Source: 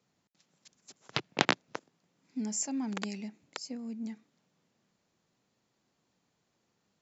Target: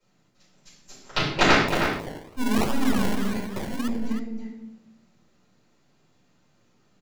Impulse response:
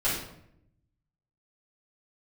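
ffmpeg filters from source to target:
-filter_complex "[0:a]aeval=exprs='if(lt(val(0),0),0.708*val(0),val(0))':c=same[s0];[1:a]atrim=start_sample=2205,asetrate=40572,aresample=44100[s1];[s0][s1]afir=irnorm=-1:irlink=0,asettb=1/sr,asplit=3[s2][s3][s4];[s2]atrim=end=1.684[s5];[s3]atrim=start=1.68:end=3.88,asetpts=PTS-STARTPTS,afade=t=in:d=0.004:c=qsin,afade=t=out:st=2.196:d=0.004:c=qsin,acrusher=samples=28:mix=1:aa=0.000001:lfo=1:lforange=16.8:lforate=1.6[s6];[s4]atrim=start=3.876[s7];[s5][s6]acrossfade=d=0.004:c1=hsin:c2=qsin[s8];[s8][s7]acrossfade=d=0.004:c1=qsin:c2=hsin,asplit=2[s9][s10];[s10]adelay=314.9,volume=0.501,highshelf=f=4000:g=-7.08[s11];[s9][s11]amix=inputs=2:normalize=0"

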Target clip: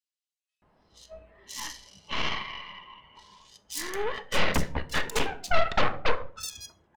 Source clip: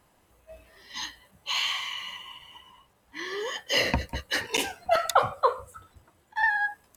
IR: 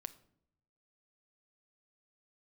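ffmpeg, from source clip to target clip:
-filter_complex "[0:a]adynamicsmooth=sensitivity=1:basefreq=2200,aeval=exprs='0.422*(cos(1*acos(clip(val(0)/0.422,-1,1)))-cos(1*PI/2))+0.133*(cos(8*acos(clip(val(0)/0.422,-1,1)))-cos(8*PI/2))':c=same,asoftclip=type=hard:threshold=0.158,acrossover=split=4600[s0][s1];[s0]adelay=620[s2];[s2][s1]amix=inputs=2:normalize=0[s3];[1:a]atrim=start_sample=2205,afade=t=out:st=0.33:d=0.01,atrim=end_sample=14994,asetrate=57330,aresample=44100[s4];[s3][s4]afir=irnorm=-1:irlink=0,volume=2.24"

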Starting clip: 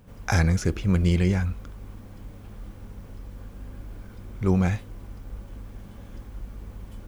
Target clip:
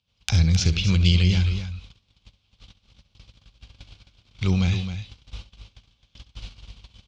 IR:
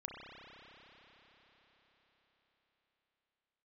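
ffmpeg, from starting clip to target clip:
-filter_complex "[0:a]lowpass=f=4100:w=0.5412,lowpass=f=4100:w=1.3066,agate=range=0.0316:threshold=0.0178:ratio=16:detection=peak,highpass=60,equalizer=f=320:w=0.57:g=-12,acrossover=split=410[s0][s1];[s1]acompressor=threshold=0.00562:ratio=12[s2];[s0][s2]amix=inputs=2:normalize=0,aexciter=amount=13.4:drive=3.5:freq=2700,asplit=2[s3][s4];[s4]aecho=0:1:68|263:0.188|0.316[s5];[s3][s5]amix=inputs=2:normalize=0,volume=2.37"

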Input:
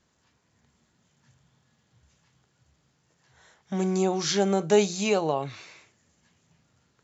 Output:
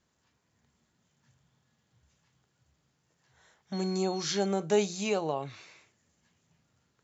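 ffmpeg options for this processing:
-filter_complex "[0:a]asettb=1/sr,asplit=3[s0][s1][s2];[s0]atrim=end=3.734[s3];[s1]atrim=start=3.73:end=4.46,asetpts=PTS-STARTPTS,afade=t=in:d=0.004:c=qsin,afade=t=out:st=0.726:d=0.004:c=qsin,aeval=exprs='val(0)+0.0126*sin(2*PI*4300*n/s)':c=same[s4];[s2]atrim=start=4.456[s5];[s3][s4]acrossfade=d=0.004:c1=hsin:c2=qsin[s6];[s6][s5]acrossfade=d=0.004:c1=qsin:c2=hsin,volume=0.531"

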